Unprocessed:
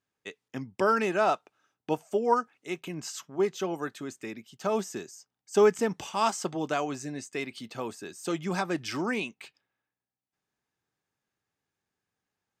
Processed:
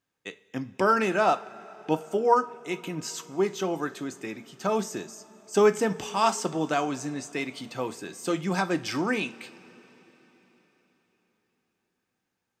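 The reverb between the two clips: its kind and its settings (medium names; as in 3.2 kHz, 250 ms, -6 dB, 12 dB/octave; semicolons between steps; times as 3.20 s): two-slope reverb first 0.29 s, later 4.4 s, from -20 dB, DRR 9.5 dB; trim +2.5 dB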